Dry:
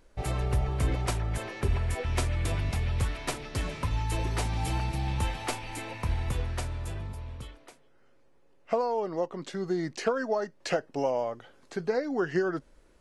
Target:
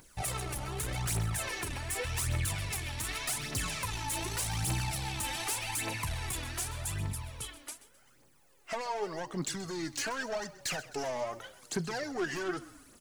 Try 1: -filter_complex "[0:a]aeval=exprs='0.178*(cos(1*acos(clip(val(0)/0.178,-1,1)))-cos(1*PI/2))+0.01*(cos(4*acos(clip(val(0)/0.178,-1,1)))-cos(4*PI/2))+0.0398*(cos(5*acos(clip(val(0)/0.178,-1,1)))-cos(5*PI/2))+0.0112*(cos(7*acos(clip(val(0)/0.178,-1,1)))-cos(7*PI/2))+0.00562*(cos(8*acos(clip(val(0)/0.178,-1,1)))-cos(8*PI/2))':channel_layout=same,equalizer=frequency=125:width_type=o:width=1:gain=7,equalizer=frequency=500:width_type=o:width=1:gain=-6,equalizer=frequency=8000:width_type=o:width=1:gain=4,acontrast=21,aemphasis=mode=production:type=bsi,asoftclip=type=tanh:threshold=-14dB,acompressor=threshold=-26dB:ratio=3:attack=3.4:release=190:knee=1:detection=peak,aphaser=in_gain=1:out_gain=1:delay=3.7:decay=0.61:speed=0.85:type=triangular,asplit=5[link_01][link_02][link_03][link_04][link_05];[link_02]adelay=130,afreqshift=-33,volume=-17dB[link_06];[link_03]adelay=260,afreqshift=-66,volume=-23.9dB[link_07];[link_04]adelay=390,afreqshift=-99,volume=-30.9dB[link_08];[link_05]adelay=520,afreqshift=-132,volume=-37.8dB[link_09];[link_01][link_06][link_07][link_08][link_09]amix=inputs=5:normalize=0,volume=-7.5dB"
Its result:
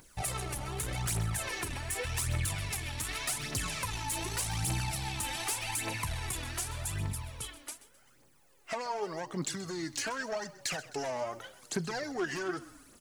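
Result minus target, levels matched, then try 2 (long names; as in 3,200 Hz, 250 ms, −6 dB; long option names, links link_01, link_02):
soft clipping: distortion −6 dB
-filter_complex "[0:a]aeval=exprs='0.178*(cos(1*acos(clip(val(0)/0.178,-1,1)))-cos(1*PI/2))+0.01*(cos(4*acos(clip(val(0)/0.178,-1,1)))-cos(4*PI/2))+0.0398*(cos(5*acos(clip(val(0)/0.178,-1,1)))-cos(5*PI/2))+0.0112*(cos(7*acos(clip(val(0)/0.178,-1,1)))-cos(7*PI/2))+0.00562*(cos(8*acos(clip(val(0)/0.178,-1,1)))-cos(8*PI/2))':channel_layout=same,equalizer=frequency=125:width_type=o:width=1:gain=7,equalizer=frequency=500:width_type=o:width=1:gain=-6,equalizer=frequency=8000:width_type=o:width=1:gain=4,acontrast=21,aemphasis=mode=production:type=bsi,asoftclip=type=tanh:threshold=-22dB,acompressor=threshold=-26dB:ratio=3:attack=3.4:release=190:knee=1:detection=peak,aphaser=in_gain=1:out_gain=1:delay=3.7:decay=0.61:speed=0.85:type=triangular,asplit=5[link_01][link_02][link_03][link_04][link_05];[link_02]adelay=130,afreqshift=-33,volume=-17dB[link_06];[link_03]adelay=260,afreqshift=-66,volume=-23.9dB[link_07];[link_04]adelay=390,afreqshift=-99,volume=-30.9dB[link_08];[link_05]adelay=520,afreqshift=-132,volume=-37.8dB[link_09];[link_01][link_06][link_07][link_08][link_09]amix=inputs=5:normalize=0,volume=-7.5dB"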